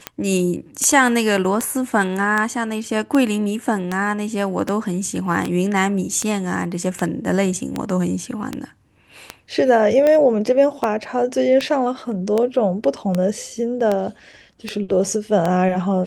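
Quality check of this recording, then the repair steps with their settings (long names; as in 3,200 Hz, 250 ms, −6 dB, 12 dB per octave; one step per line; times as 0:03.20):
scratch tick 78 rpm −8 dBFS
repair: click removal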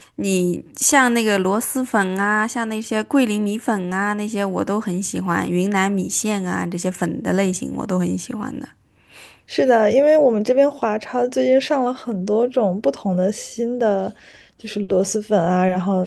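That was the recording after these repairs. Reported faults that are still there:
none of them is left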